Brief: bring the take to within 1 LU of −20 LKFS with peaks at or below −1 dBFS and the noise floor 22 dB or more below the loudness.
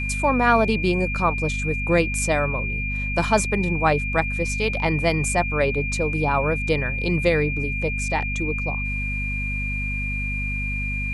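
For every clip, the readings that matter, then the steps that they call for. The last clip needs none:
mains hum 50 Hz; hum harmonics up to 250 Hz; level of the hum −25 dBFS; interfering tone 2,400 Hz; level of the tone −27 dBFS; integrated loudness −22.5 LKFS; sample peak −4.5 dBFS; target loudness −20.0 LKFS
→ mains-hum notches 50/100/150/200/250 Hz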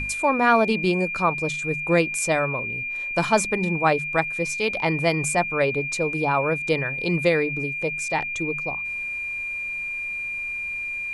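mains hum none found; interfering tone 2,400 Hz; level of the tone −27 dBFS
→ notch filter 2,400 Hz, Q 30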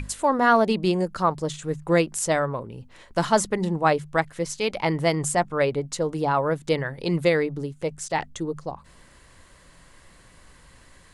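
interfering tone none found; integrated loudness −24.5 LKFS; sample peak −6.0 dBFS; target loudness −20.0 LKFS
→ level +4.5 dB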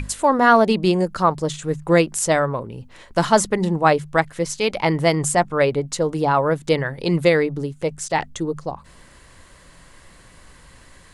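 integrated loudness −20.0 LKFS; sample peak −1.5 dBFS; background noise floor −48 dBFS

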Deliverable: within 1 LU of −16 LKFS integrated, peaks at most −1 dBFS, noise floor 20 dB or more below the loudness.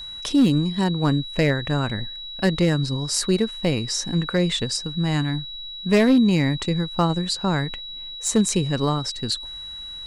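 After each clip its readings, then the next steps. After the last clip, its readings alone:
share of clipped samples 0.5%; peaks flattened at −11.0 dBFS; interfering tone 3,900 Hz; level of the tone −33 dBFS; integrated loudness −22.0 LKFS; sample peak −11.0 dBFS; target loudness −16.0 LKFS
→ clipped peaks rebuilt −11 dBFS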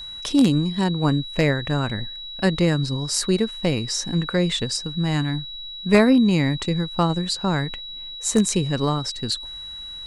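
share of clipped samples 0.0%; interfering tone 3,900 Hz; level of the tone −33 dBFS
→ notch filter 3,900 Hz, Q 30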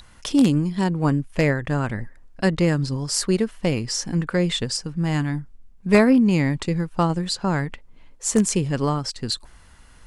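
interfering tone none found; integrated loudness −22.0 LKFS; sample peak −2.0 dBFS; target loudness −16.0 LKFS
→ level +6 dB
brickwall limiter −1 dBFS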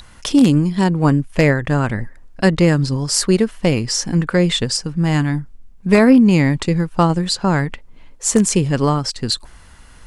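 integrated loudness −16.5 LKFS; sample peak −1.0 dBFS; background noise floor −43 dBFS

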